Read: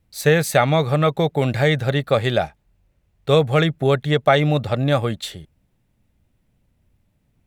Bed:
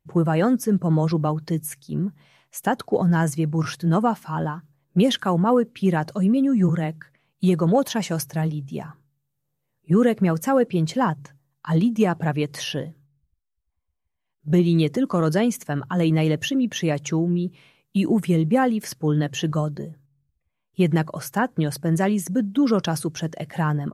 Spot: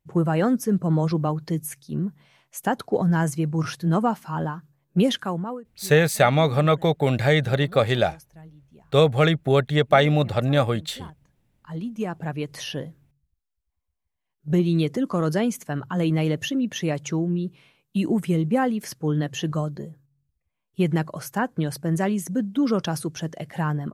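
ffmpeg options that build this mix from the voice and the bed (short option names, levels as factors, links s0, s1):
-filter_complex "[0:a]adelay=5650,volume=0.841[s0];[1:a]volume=7.94,afade=t=out:st=5.06:d=0.55:silence=0.0944061,afade=t=in:st=11.43:d=1.45:silence=0.105925[s1];[s0][s1]amix=inputs=2:normalize=0"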